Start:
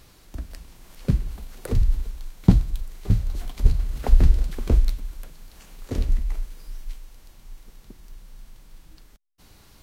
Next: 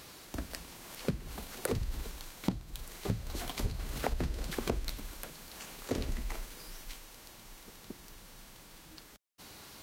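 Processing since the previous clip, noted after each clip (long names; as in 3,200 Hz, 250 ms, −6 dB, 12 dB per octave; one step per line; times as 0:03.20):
high-pass filter 270 Hz 6 dB per octave
downward compressor 12 to 1, threshold −34 dBFS, peak gain reduction 21 dB
level +5 dB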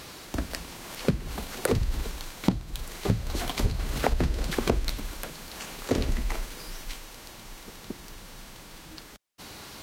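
high-shelf EQ 9,200 Hz −6 dB
level +8.5 dB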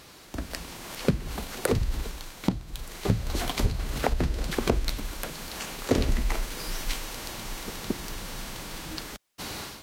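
automatic gain control gain up to 14.5 dB
level −6.5 dB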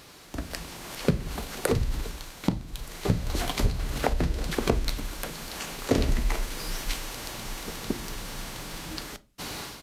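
convolution reverb RT60 0.35 s, pre-delay 7 ms, DRR 13.5 dB
downsampling to 32,000 Hz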